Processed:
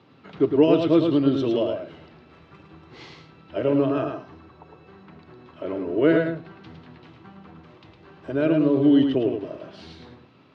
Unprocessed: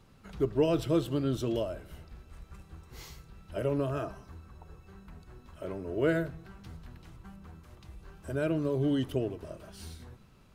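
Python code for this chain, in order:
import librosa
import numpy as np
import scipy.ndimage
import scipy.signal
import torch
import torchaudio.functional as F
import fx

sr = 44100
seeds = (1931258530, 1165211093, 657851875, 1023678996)

p1 = fx.cabinet(x, sr, low_hz=120.0, low_slope=24, high_hz=4100.0, hz=(130.0, 200.0, 290.0, 1500.0), db=(-5, -7, 6, -3))
p2 = p1 + fx.echo_single(p1, sr, ms=108, db=-5.5, dry=0)
y = p2 * 10.0 ** (7.5 / 20.0)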